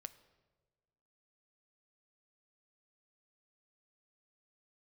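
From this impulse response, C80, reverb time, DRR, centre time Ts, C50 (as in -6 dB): 17.5 dB, 1.4 s, 12.0 dB, 5 ms, 16.0 dB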